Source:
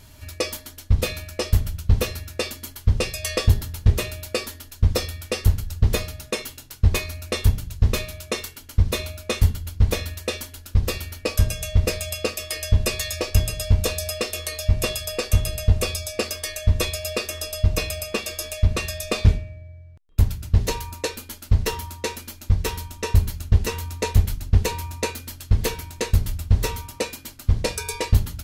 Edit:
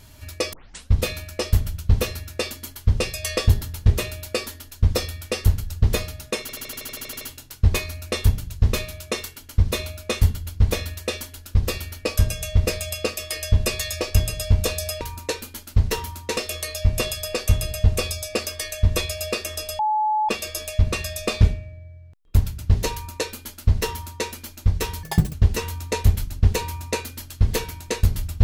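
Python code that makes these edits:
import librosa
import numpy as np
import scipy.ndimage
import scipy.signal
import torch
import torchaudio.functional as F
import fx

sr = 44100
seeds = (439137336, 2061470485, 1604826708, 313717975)

y = fx.edit(x, sr, fx.tape_start(start_s=0.53, length_s=0.38),
    fx.stutter(start_s=6.41, slice_s=0.08, count=11),
    fx.bleep(start_s=17.63, length_s=0.5, hz=857.0, db=-18.0),
    fx.duplicate(start_s=20.76, length_s=1.36, to_s=14.21),
    fx.speed_span(start_s=22.87, length_s=0.57, speed=1.85), tone=tone)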